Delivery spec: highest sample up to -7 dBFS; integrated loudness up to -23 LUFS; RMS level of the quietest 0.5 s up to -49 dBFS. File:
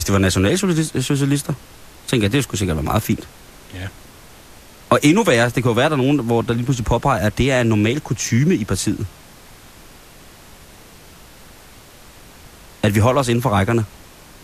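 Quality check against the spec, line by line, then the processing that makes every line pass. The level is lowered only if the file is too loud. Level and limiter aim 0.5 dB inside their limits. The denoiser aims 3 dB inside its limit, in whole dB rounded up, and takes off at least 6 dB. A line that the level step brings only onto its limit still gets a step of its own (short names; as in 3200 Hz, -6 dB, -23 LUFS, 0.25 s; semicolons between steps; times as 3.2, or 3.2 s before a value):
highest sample -2.5 dBFS: fail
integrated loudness -18.0 LUFS: fail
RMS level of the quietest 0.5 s -43 dBFS: fail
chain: denoiser 6 dB, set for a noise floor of -43 dBFS; gain -5.5 dB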